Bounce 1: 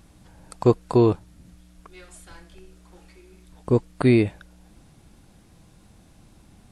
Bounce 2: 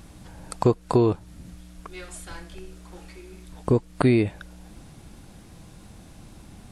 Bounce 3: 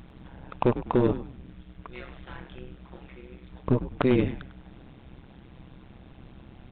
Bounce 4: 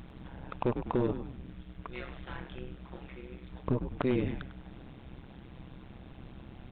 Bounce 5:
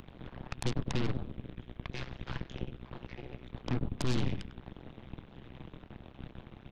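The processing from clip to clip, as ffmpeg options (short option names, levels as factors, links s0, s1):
-af "acompressor=threshold=0.0501:ratio=2.5,volume=2.11"
-filter_complex "[0:a]aresample=8000,asoftclip=type=hard:threshold=0.211,aresample=44100,tremolo=f=130:d=0.919,asplit=5[s0][s1][s2][s3][s4];[s1]adelay=100,afreqshift=-76,volume=0.251[s5];[s2]adelay=200,afreqshift=-152,volume=0.0902[s6];[s3]adelay=300,afreqshift=-228,volume=0.0327[s7];[s4]adelay=400,afreqshift=-304,volume=0.0117[s8];[s0][s5][s6][s7][s8]amix=inputs=5:normalize=0,volume=1.19"
-af "alimiter=limit=0.106:level=0:latency=1:release=167"
-filter_complex "[0:a]asplit=2[s0][s1];[s1]adelay=14,volume=0.211[s2];[s0][s2]amix=inputs=2:normalize=0,aeval=exprs='0.133*(cos(1*acos(clip(val(0)/0.133,-1,1)))-cos(1*PI/2))+0.0422*(cos(5*acos(clip(val(0)/0.133,-1,1)))-cos(5*PI/2))+0.0335*(cos(7*acos(clip(val(0)/0.133,-1,1)))-cos(7*PI/2))+0.0531*(cos(8*acos(clip(val(0)/0.133,-1,1)))-cos(8*PI/2))':c=same,acrossover=split=260|3000[s3][s4][s5];[s4]acompressor=threshold=0.00631:ratio=2.5[s6];[s3][s6][s5]amix=inputs=3:normalize=0,volume=0.794"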